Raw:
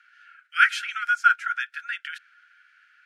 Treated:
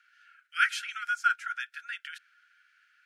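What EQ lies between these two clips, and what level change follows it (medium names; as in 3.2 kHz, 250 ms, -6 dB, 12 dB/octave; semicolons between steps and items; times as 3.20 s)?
peaking EQ 1.4 kHz -7.5 dB 2.9 oct; 0.0 dB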